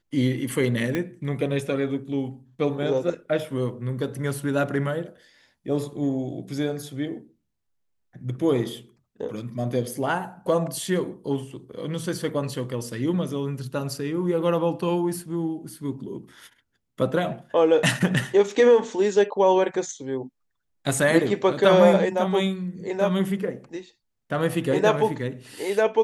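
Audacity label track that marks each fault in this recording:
0.950000	0.950000	pop -13 dBFS

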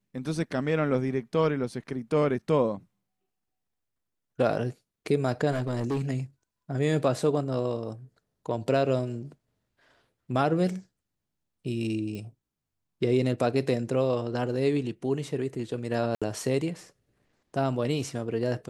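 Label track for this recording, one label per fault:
5.510000	6.020000	clipped -24 dBFS
12.150000	12.150000	pop -27 dBFS
16.150000	16.220000	dropout 66 ms

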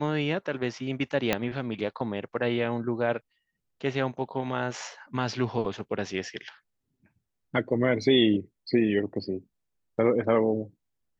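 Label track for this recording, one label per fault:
1.330000	1.330000	pop -9 dBFS

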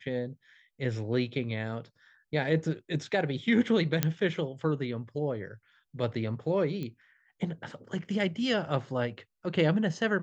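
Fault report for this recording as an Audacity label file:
4.030000	4.030000	pop -9 dBFS
6.830000	6.830000	pop -25 dBFS

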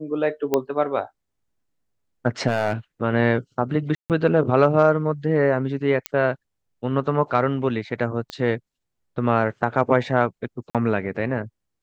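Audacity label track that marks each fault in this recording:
0.540000	0.540000	pop -7 dBFS
2.470000	2.730000	clipped -15.5 dBFS
3.950000	4.100000	dropout 148 ms
6.060000	6.060000	pop -8 dBFS
8.300000	8.300000	pop -18 dBFS
10.700000	10.750000	dropout 47 ms

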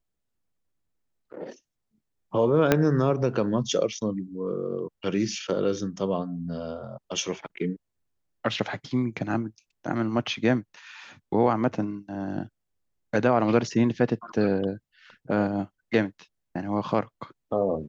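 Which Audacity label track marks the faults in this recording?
2.720000	2.720000	pop -5 dBFS

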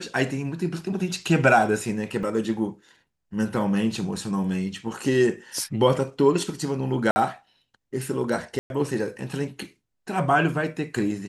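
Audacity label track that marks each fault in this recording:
2.230000	2.230000	dropout 3.2 ms
7.110000	7.160000	dropout 50 ms
8.590000	8.700000	dropout 111 ms

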